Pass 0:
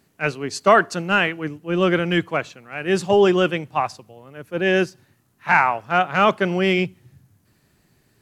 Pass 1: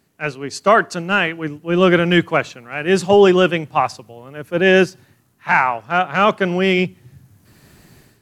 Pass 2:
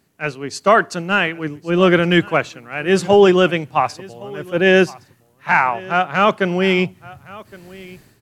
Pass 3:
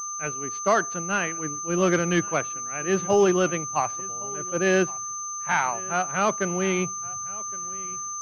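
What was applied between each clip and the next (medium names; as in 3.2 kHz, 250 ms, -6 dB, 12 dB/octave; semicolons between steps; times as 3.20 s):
level rider gain up to 15 dB; trim -1 dB
delay 1115 ms -21.5 dB
whistle 1.2 kHz -27 dBFS; class-D stage that switches slowly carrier 6.2 kHz; trim -8.5 dB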